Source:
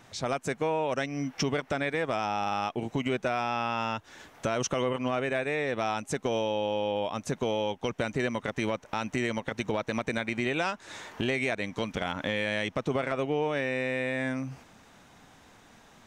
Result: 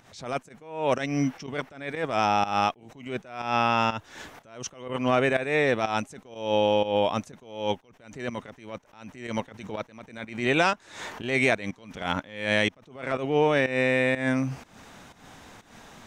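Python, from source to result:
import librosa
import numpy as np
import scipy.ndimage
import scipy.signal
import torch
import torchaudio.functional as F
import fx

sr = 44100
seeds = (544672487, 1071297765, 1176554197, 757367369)

y = fx.volume_shaper(x, sr, bpm=123, per_beat=1, depth_db=-15, release_ms=173.0, shape='fast start')
y = fx.attack_slew(y, sr, db_per_s=100.0)
y = y * librosa.db_to_amplitude(7.5)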